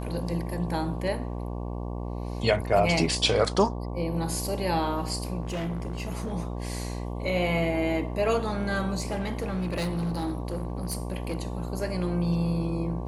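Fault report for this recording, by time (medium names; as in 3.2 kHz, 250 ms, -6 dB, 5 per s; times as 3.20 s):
buzz 60 Hz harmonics 19 -33 dBFS
5.42–6.34 s: clipped -27.5 dBFS
9.00–11.37 s: clipped -25 dBFS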